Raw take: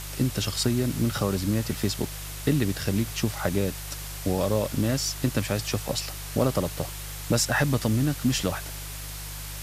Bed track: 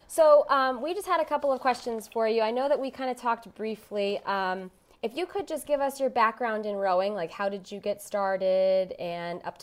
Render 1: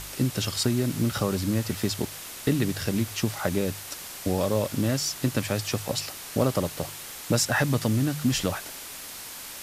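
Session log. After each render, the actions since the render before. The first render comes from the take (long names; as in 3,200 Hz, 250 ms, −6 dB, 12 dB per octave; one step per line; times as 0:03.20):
hum removal 50 Hz, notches 3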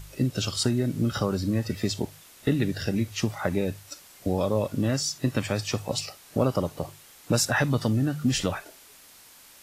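noise reduction from a noise print 12 dB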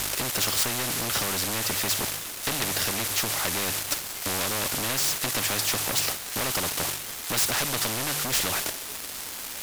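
leveller curve on the samples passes 3
every bin compressed towards the loudest bin 4 to 1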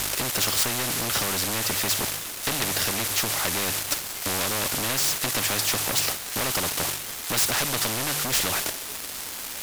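level +1.5 dB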